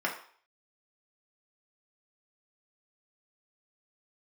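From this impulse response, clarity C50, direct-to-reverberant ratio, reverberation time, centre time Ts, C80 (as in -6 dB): 8.0 dB, -3.0 dB, 0.50 s, 21 ms, 12.0 dB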